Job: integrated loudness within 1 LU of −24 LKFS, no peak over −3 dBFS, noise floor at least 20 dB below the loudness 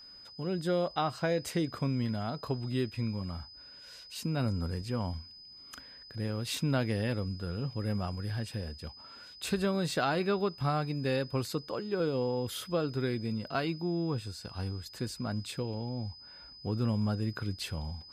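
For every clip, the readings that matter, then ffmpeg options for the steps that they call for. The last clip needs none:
interfering tone 5,000 Hz; level of the tone −49 dBFS; integrated loudness −33.5 LKFS; sample peak −17.5 dBFS; target loudness −24.0 LKFS
→ -af "bandreject=frequency=5000:width=30"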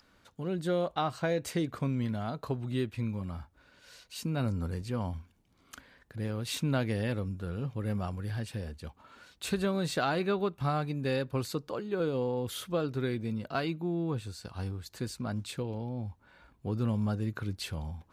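interfering tone none found; integrated loudness −33.5 LKFS; sample peak −17.5 dBFS; target loudness −24.0 LKFS
→ -af "volume=9.5dB"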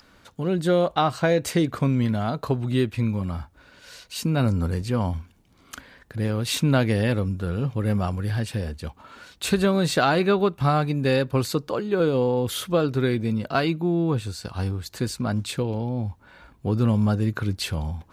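integrated loudness −24.0 LKFS; sample peak −8.0 dBFS; background noise floor −56 dBFS

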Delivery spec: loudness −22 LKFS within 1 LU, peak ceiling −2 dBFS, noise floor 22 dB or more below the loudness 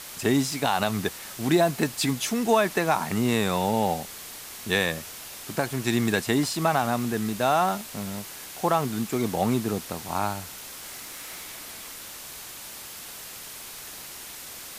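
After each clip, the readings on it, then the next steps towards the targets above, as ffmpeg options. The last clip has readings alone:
background noise floor −41 dBFS; target noise floor −48 dBFS; integrated loudness −26.0 LKFS; sample peak −8.0 dBFS; target loudness −22.0 LKFS
→ -af "afftdn=noise_reduction=7:noise_floor=-41"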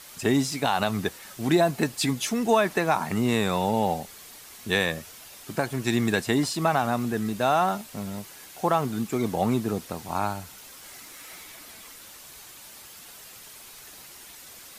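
background noise floor −46 dBFS; target noise floor −48 dBFS
→ -af "afftdn=noise_reduction=6:noise_floor=-46"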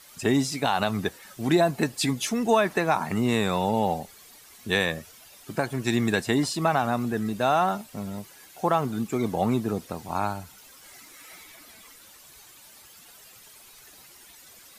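background noise floor −51 dBFS; integrated loudness −26.0 LKFS; sample peak −8.5 dBFS; target loudness −22.0 LKFS
→ -af "volume=4dB"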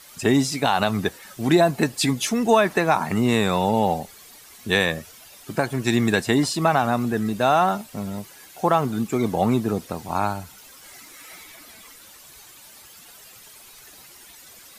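integrated loudness −22.0 LKFS; sample peak −4.5 dBFS; background noise floor −47 dBFS

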